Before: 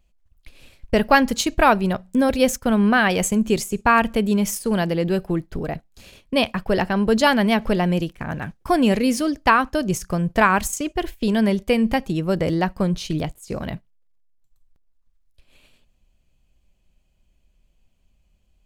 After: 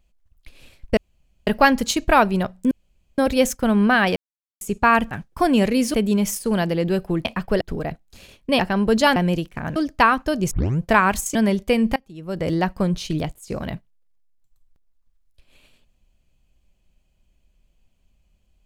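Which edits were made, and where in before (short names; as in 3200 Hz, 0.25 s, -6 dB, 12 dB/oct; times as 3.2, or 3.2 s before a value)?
0.97 insert room tone 0.50 s
2.21 insert room tone 0.47 s
3.19–3.64 mute
6.43–6.79 move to 5.45
7.36–7.8 cut
8.4–9.23 move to 4.14
9.98 tape start 0.28 s
10.82–11.35 cut
11.96–12.52 fade in quadratic, from -24 dB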